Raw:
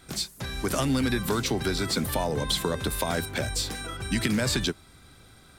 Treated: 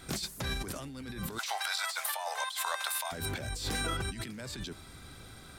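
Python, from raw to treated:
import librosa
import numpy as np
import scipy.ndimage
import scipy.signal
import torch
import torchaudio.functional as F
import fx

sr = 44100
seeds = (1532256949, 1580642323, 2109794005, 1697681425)

y = fx.steep_highpass(x, sr, hz=680.0, slope=48, at=(1.37, 3.11), fade=0.02)
y = fx.over_compress(y, sr, threshold_db=-35.0, ratio=-1.0)
y = F.gain(torch.from_numpy(y), -2.0).numpy()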